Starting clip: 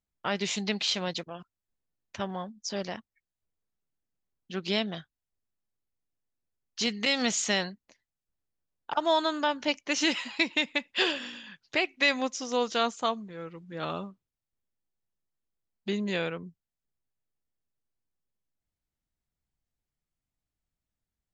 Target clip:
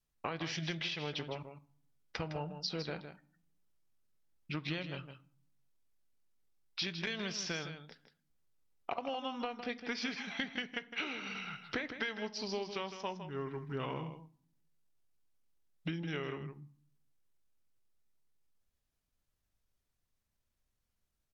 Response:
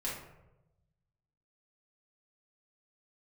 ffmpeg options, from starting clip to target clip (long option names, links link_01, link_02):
-filter_complex "[0:a]adynamicequalizer=threshold=0.00501:dfrequency=710:dqfactor=5.7:tfrequency=710:tqfactor=5.7:attack=5:release=100:ratio=0.375:range=1.5:mode=cutabove:tftype=bell,acompressor=threshold=-38dB:ratio=20,asetrate=36028,aresample=44100,atempo=1.22405,aecho=1:1:159:0.316,asplit=2[link_01][link_02];[1:a]atrim=start_sample=2205,asetrate=79380,aresample=44100[link_03];[link_02][link_03]afir=irnorm=-1:irlink=0,volume=-11dB[link_04];[link_01][link_04]amix=inputs=2:normalize=0,volume=2.5dB"